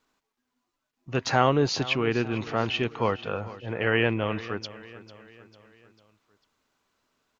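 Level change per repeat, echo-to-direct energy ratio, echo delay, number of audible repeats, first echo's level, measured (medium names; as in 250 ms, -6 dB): -6.0 dB, -16.0 dB, 447 ms, 3, -17.0 dB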